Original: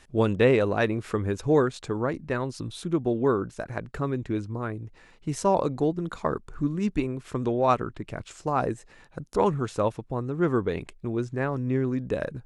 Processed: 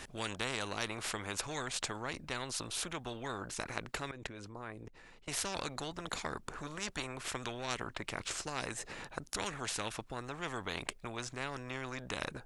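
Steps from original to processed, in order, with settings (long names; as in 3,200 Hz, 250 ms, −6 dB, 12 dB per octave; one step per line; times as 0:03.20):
0:04.11–0:05.28: output level in coarse steps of 22 dB
every bin compressed towards the loudest bin 4 to 1
level −6 dB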